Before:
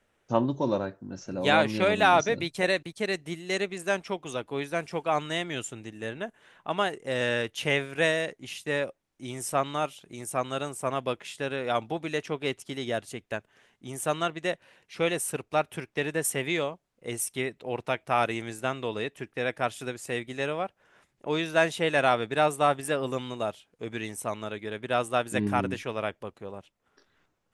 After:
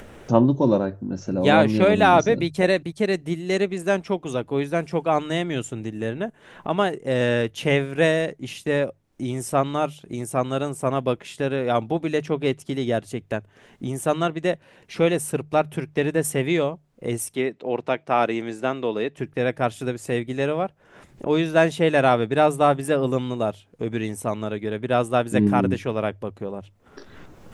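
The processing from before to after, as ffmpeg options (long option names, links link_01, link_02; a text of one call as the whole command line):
ffmpeg -i in.wav -filter_complex "[0:a]asettb=1/sr,asplit=3[link_01][link_02][link_03];[link_01]atrim=end=17.354[link_04];[link_02]atrim=start=17.35:end=19.17,asetpts=PTS-STARTPTS,afade=type=in:duration=0.004:curve=qsin,afade=type=out:start_time=1.816:duration=0.004:curve=qsin,highpass=220,lowpass=6500[link_05];[link_03]atrim=start=19.166[link_06];[link_04][link_05]acrossfade=duration=0.004:curve1=hsin:curve2=qsin[link_07];[link_07][link_06]acrossfade=duration=0.004:curve1=qsin:curve2=hsin,acompressor=mode=upward:threshold=-33dB:ratio=2.5,tiltshelf=frequency=650:gain=5.5,bandreject=frequency=50:width_type=h:width=6,bandreject=frequency=100:width_type=h:width=6,bandreject=frequency=150:width_type=h:width=6,volume=6dB" out.wav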